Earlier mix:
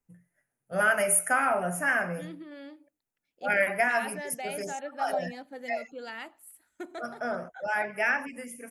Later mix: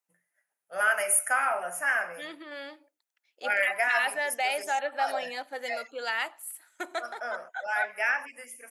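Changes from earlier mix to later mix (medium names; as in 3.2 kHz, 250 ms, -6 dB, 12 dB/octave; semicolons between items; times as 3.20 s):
second voice +11.0 dB; master: add high-pass 710 Hz 12 dB/octave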